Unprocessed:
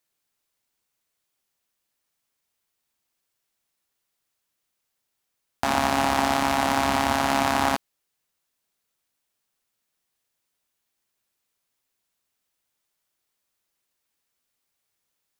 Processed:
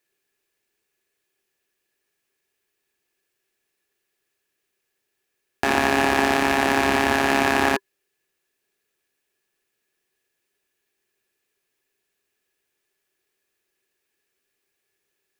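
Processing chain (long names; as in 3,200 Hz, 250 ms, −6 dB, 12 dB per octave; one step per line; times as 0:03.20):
parametric band 2,500 Hz +7 dB 0.39 octaves
notch filter 1,000 Hz, Q 21
hollow resonant body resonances 390/1,700 Hz, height 16 dB, ringing for 45 ms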